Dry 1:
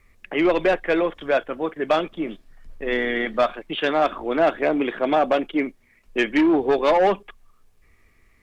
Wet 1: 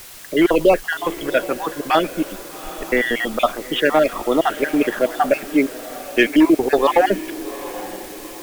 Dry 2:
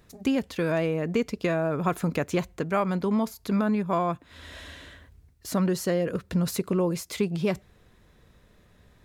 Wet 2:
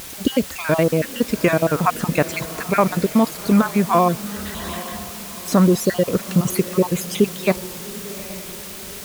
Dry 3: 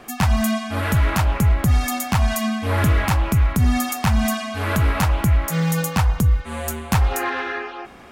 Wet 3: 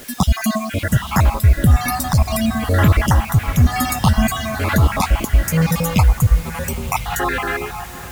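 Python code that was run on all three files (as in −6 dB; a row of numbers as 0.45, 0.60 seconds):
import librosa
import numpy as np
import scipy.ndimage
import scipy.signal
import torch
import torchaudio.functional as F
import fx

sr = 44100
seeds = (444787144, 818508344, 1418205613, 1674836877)

p1 = fx.spec_dropout(x, sr, seeds[0], share_pct=46)
p2 = fx.quant_dither(p1, sr, seeds[1], bits=6, dither='triangular')
p3 = p1 + F.gain(torch.from_numpy(p2), -6.0).numpy()
p4 = fx.wow_flutter(p3, sr, seeds[2], rate_hz=2.1, depth_cents=26.0)
p5 = fx.echo_diffused(p4, sr, ms=805, feedback_pct=46, wet_db=-15.0)
y = p5 * 10.0 ** (-3 / 20.0) / np.max(np.abs(p5))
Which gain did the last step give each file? +3.0, +7.0, +2.0 decibels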